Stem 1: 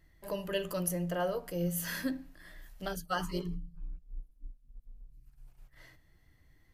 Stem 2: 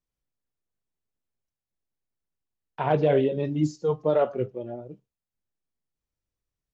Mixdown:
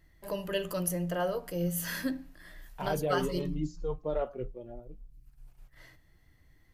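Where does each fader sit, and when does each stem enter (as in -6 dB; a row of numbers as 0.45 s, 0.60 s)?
+1.5 dB, -10.0 dB; 0.00 s, 0.00 s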